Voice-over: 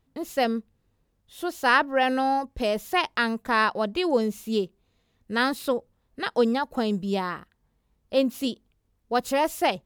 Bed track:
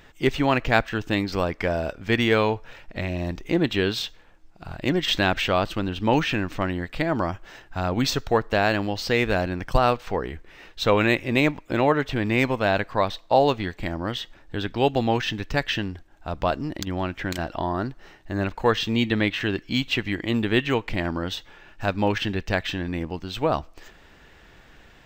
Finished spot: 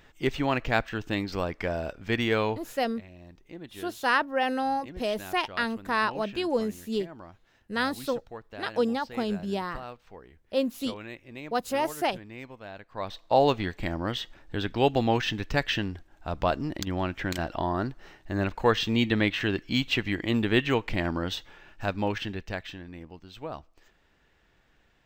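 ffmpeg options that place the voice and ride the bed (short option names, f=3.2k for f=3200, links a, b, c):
-filter_complex "[0:a]adelay=2400,volume=-4dB[a];[1:a]volume=13.5dB,afade=t=out:st=2.59:d=0.33:silence=0.16788,afade=t=in:st=12.88:d=0.56:silence=0.112202,afade=t=out:st=21.36:d=1.5:silence=0.237137[b];[a][b]amix=inputs=2:normalize=0"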